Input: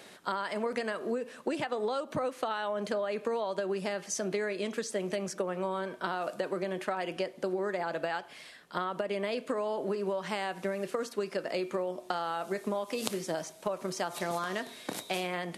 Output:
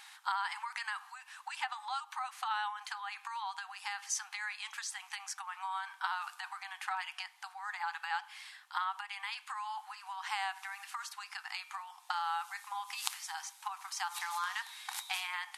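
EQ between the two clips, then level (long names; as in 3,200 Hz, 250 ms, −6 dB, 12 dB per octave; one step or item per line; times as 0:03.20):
linear-phase brick-wall high-pass 750 Hz
0.0 dB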